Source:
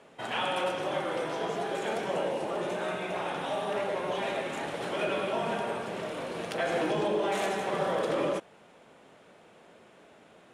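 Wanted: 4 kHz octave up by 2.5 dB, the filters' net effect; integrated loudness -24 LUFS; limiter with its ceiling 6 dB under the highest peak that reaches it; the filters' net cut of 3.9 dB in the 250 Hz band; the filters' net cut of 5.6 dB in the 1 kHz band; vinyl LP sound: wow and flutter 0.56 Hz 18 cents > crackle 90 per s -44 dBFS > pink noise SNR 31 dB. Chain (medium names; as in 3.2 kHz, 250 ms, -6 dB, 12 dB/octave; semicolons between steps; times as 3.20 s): peaking EQ 250 Hz -5.5 dB; peaking EQ 1 kHz -7.5 dB; peaking EQ 4 kHz +4 dB; peak limiter -26.5 dBFS; wow and flutter 0.56 Hz 18 cents; crackle 90 per s -44 dBFS; pink noise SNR 31 dB; trim +11.5 dB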